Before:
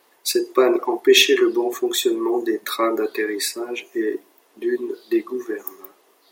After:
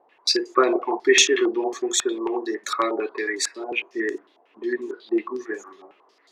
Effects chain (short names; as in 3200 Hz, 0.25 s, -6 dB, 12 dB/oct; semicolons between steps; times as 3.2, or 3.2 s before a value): 2.05–3.72 Bessel high-pass 250 Hz, order 8; stepped low-pass 11 Hz 760–6800 Hz; gain -4.5 dB